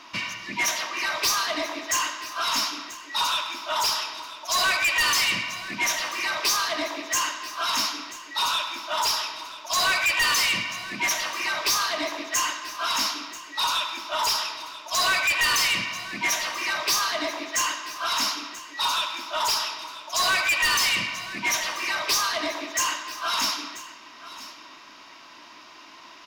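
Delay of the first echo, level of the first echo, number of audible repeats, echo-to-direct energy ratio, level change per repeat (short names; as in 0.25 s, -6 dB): 0.985 s, -16.5 dB, 1, -16.5 dB, no steady repeat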